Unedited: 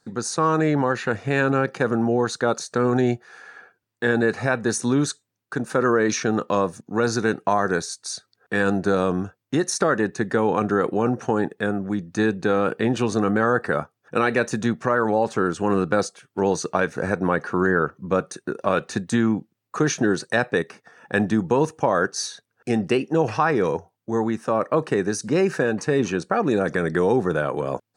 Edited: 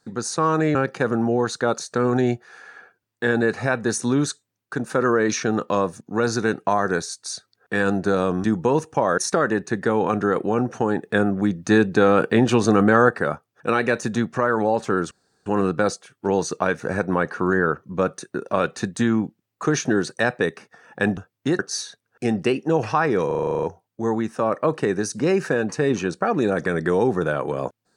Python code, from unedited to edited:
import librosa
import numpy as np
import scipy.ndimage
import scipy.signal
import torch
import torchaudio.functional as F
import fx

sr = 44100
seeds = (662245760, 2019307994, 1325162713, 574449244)

y = fx.edit(x, sr, fx.cut(start_s=0.75, length_s=0.8),
    fx.swap(start_s=9.24, length_s=0.42, other_s=21.3, other_length_s=0.74),
    fx.clip_gain(start_s=11.53, length_s=2.04, db=4.5),
    fx.insert_room_tone(at_s=15.59, length_s=0.35),
    fx.stutter(start_s=23.72, slice_s=0.04, count=10), tone=tone)